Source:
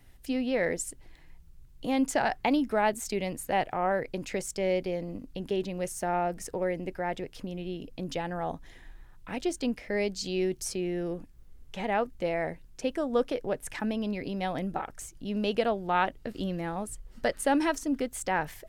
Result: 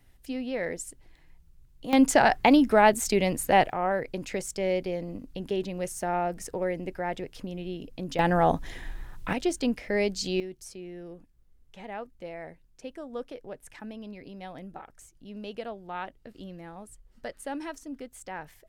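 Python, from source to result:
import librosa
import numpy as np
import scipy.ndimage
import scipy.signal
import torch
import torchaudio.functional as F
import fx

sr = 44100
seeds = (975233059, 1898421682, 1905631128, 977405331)

y = fx.gain(x, sr, db=fx.steps((0.0, -3.5), (1.93, 7.0), (3.7, 0.5), (8.19, 11.0), (9.33, 3.0), (10.4, -10.0)))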